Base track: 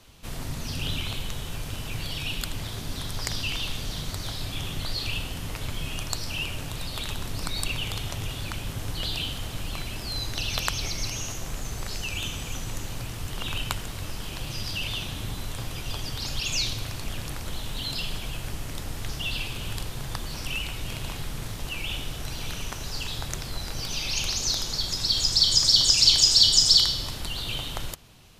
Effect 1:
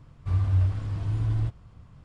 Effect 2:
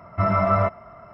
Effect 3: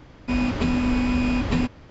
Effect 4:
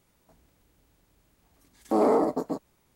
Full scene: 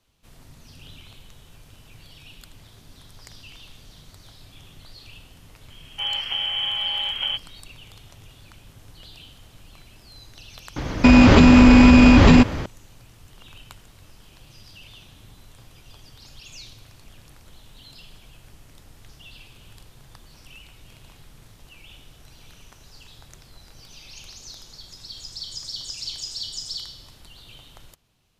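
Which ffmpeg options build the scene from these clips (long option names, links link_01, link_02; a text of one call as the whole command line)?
ffmpeg -i bed.wav -i cue0.wav -i cue1.wav -i cue2.wav -filter_complex "[3:a]asplit=2[link_01][link_02];[0:a]volume=-15dB[link_03];[link_01]lowpass=frequency=2800:width_type=q:width=0.5098,lowpass=frequency=2800:width_type=q:width=0.6013,lowpass=frequency=2800:width_type=q:width=0.9,lowpass=frequency=2800:width_type=q:width=2.563,afreqshift=-3300[link_04];[link_02]alimiter=level_in=20.5dB:limit=-1dB:release=50:level=0:latency=1[link_05];[link_04]atrim=end=1.9,asetpts=PTS-STARTPTS,volume=-4.5dB,afade=type=in:duration=0.004:curve=hsin,afade=type=out:start_time=1.896:duration=0.004:curve=hsin,adelay=5700[link_06];[link_05]atrim=end=1.9,asetpts=PTS-STARTPTS,volume=-2dB,afade=type=in:duration=0.004:curve=hsin,afade=type=out:start_time=1.896:duration=0.004:curve=hsin,adelay=10760[link_07];[link_03][link_06][link_07]amix=inputs=3:normalize=0" out.wav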